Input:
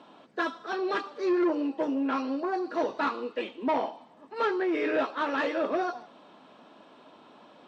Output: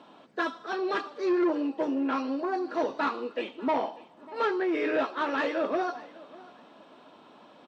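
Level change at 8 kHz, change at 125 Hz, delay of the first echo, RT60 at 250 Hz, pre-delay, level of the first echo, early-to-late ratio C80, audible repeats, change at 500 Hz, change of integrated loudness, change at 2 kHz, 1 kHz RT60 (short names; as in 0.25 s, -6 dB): n/a, n/a, 0.594 s, none, none, -21.0 dB, none, 2, 0.0 dB, 0.0 dB, 0.0 dB, none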